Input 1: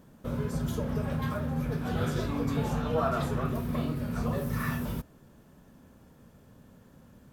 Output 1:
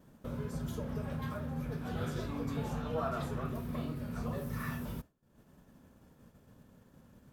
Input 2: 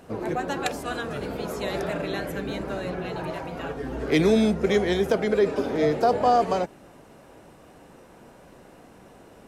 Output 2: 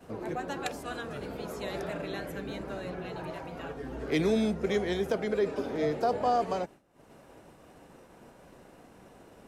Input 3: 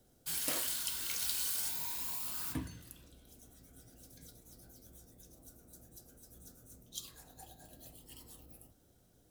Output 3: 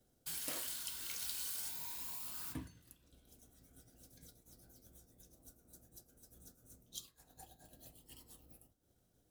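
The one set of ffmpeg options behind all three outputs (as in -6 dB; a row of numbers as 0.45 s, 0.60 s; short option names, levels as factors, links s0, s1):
-af "acompressor=mode=upward:threshold=0.0282:ratio=2.5,agate=range=0.0224:threshold=0.0178:ratio=3:detection=peak,volume=0.447"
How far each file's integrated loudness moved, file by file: -7.0 LU, -7.0 LU, -6.0 LU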